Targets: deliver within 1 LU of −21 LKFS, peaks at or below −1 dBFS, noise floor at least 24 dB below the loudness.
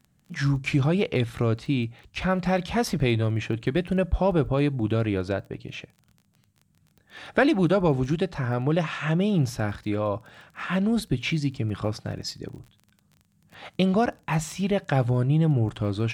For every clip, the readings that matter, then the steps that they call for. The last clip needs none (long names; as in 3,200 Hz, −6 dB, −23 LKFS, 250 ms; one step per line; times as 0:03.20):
crackle rate 22 per second; integrated loudness −25.5 LKFS; sample peak −10.0 dBFS; target loudness −21.0 LKFS
→ click removal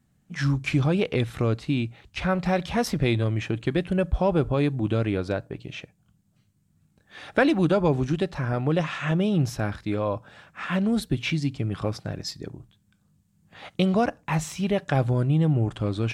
crackle rate 0 per second; integrated loudness −25.5 LKFS; sample peak −10.0 dBFS; target loudness −21.0 LKFS
→ level +4.5 dB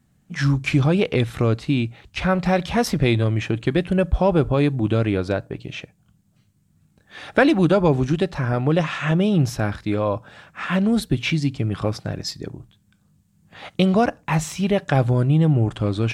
integrated loudness −21.0 LKFS; sample peak −5.5 dBFS; background noise floor −62 dBFS